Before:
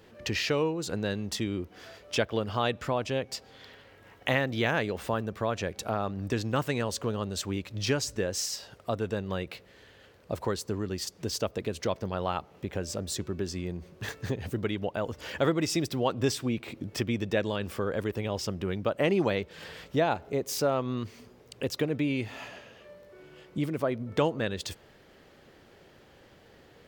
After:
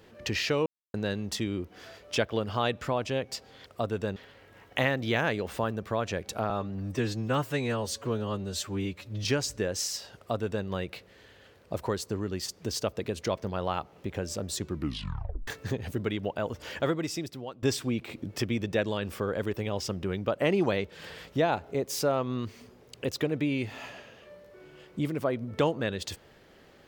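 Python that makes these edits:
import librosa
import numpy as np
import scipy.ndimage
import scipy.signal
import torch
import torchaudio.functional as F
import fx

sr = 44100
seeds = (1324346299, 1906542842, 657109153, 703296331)

y = fx.edit(x, sr, fx.silence(start_s=0.66, length_s=0.28),
    fx.stretch_span(start_s=6.0, length_s=1.83, factor=1.5),
    fx.duplicate(start_s=8.75, length_s=0.5, to_s=3.66),
    fx.tape_stop(start_s=13.26, length_s=0.8),
    fx.fade_out_to(start_s=15.2, length_s=1.01, floor_db=-19.0), tone=tone)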